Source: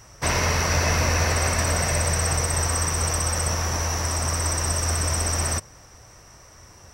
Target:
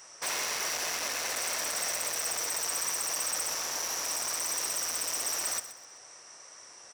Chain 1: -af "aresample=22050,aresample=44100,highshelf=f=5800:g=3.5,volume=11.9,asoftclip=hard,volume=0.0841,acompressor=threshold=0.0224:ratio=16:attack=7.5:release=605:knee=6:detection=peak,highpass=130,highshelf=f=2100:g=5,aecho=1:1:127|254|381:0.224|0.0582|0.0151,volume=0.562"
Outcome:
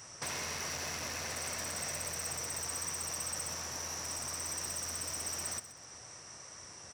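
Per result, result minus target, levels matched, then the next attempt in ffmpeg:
125 Hz band +17.5 dB; compression: peak gain reduction +10.5 dB; overload inside the chain: distortion -4 dB
-af "aresample=22050,aresample=44100,highshelf=f=5800:g=3.5,volume=11.9,asoftclip=hard,volume=0.0841,acompressor=threshold=0.0224:ratio=16:attack=7.5:release=605:knee=6:detection=peak,highpass=400,highshelf=f=2100:g=5,aecho=1:1:127|254|381:0.224|0.0582|0.0151,volume=0.562"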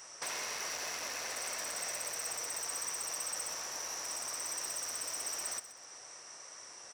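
compression: peak gain reduction +10.5 dB; overload inside the chain: distortion -4 dB
-af "aresample=22050,aresample=44100,highshelf=f=5800:g=3.5,volume=11.9,asoftclip=hard,volume=0.0841,highpass=400,highshelf=f=2100:g=5,aecho=1:1:127|254|381:0.224|0.0582|0.0151,volume=0.562"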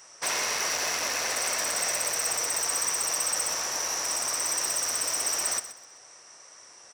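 overload inside the chain: distortion -4 dB
-af "aresample=22050,aresample=44100,highshelf=f=5800:g=3.5,volume=23.7,asoftclip=hard,volume=0.0422,highpass=400,highshelf=f=2100:g=5,aecho=1:1:127|254|381:0.224|0.0582|0.0151,volume=0.562"

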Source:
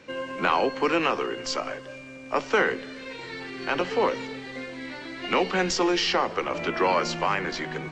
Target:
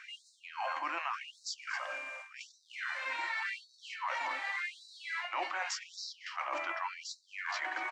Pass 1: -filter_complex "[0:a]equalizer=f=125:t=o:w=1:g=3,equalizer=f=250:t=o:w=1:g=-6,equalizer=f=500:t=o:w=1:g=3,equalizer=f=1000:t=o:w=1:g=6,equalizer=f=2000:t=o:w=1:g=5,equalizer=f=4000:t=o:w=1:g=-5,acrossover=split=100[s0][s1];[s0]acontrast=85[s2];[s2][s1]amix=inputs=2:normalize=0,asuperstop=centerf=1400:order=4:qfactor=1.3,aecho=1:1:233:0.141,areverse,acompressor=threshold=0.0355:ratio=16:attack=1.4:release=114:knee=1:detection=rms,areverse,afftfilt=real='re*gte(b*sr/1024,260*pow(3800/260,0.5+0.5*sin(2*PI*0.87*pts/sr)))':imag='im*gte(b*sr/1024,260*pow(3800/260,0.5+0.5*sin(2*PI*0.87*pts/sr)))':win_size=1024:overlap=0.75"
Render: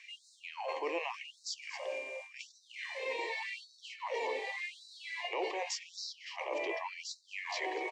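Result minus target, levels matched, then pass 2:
500 Hz band +10.5 dB
-filter_complex "[0:a]equalizer=f=125:t=o:w=1:g=3,equalizer=f=250:t=o:w=1:g=-6,equalizer=f=500:t=o:w=1:g=3,equalizer=f=1000:t=o:w=1:g=6,equalizer=f=2000:t=o:w=1:g=5,equalizer=f=4000:t=o:w=1:g=-5,acrossover=split=100[s0][s1];[s0]acontrast=85[s2];[s2][s1]amix=inputs=2:normalize=0,asuperstop=centerf=440:order=4:qfactor=1.3,aecho=1:1:233:0.141,areverse,acompressor=threshold=0.0355:ratio=16:attack=1.4:release=114:knee=1:detection=rms,areverse,afftfilt=real='re*gte(b*sr/1024,260*pow(3800/260,0.5+0.5*sin(2*PI*0.87*pts/sr)))':imag='im*gte(b*sr/1024,260*pow(3800/260,0.5+0.5*sin(2*PI*0.87*pts/sr)))':win_size=1024:overlap=0.75"

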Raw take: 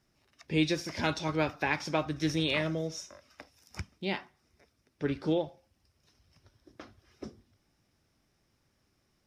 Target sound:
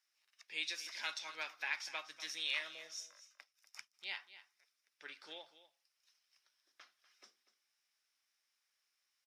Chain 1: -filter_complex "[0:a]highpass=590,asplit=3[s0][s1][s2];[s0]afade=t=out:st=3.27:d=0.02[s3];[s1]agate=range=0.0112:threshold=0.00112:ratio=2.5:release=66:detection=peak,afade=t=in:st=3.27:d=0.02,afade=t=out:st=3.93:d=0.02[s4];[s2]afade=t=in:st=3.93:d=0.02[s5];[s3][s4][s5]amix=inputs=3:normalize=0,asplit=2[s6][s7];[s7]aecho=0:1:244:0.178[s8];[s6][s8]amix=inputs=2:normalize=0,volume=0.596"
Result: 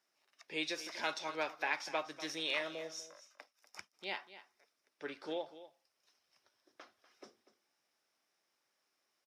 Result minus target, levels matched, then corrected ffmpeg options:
500 Hz band +13.0 dB
-filter_complex "[0:a]highpass=1700,asplit=3[s0][s1][s2];[s0]afade=t=out:st=3.27:d=0.02[s3];[s1]agate=range=0.0112:threshold=0.00112:ratio=2.5:release=66:detection=peak,afade=t=in:st=3.27:d=0.02,afade=t=out:st=3.93:d=0.02[s4];[s2]afade=t=in:st=3.93:d=0.02[s5];[s3][s4][s5]amix=inputs=3:normalize=0,asplit=2[s6][s7];[s7]aecho=0:1:244:0.178[s8];[s6][s8]amix=inputs=2:normalize=0,volume=0.596"

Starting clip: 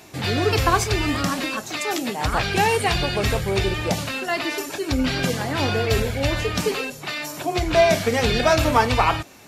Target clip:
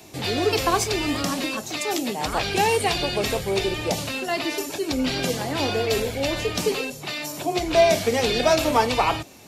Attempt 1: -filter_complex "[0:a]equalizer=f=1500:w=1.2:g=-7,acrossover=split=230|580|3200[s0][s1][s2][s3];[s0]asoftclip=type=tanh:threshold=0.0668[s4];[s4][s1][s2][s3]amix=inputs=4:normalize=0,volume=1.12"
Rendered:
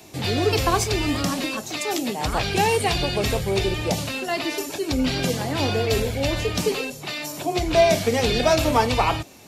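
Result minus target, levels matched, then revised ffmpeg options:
saturation: distortion -8 dB
-filter_complex "[0:a]equalizer=f=1500:w=1.2:g=-7,acrossover=split=230|580|3200[s0][s1][s2][s3];[s0]asoftclip=type=tanh:threshold=0.0188[s4];[s4][s1][s2][s3]amix=inputs=4:normalize=0,volume=1.12"

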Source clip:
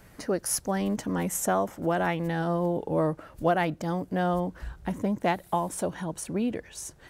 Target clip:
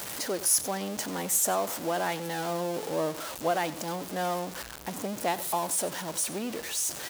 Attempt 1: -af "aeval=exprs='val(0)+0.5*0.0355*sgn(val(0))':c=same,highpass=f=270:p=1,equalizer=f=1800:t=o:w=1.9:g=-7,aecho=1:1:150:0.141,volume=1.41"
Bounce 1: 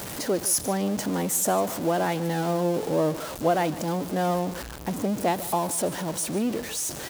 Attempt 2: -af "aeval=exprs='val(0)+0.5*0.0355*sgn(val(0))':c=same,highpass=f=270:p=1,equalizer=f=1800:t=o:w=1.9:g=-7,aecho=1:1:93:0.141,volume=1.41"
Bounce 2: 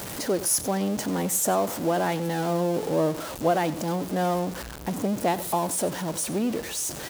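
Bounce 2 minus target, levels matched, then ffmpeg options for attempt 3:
250 Hz band +5.5 dB
-af "aeval=exprs='val(0)+0.5*0.0355*sgn(val(0))':c=same,highpass=f=1000:p=1,equalizer=f=1800:t=o:w=1.9:g=-7,aecho=1:1:93:0.141,volume=1.41"

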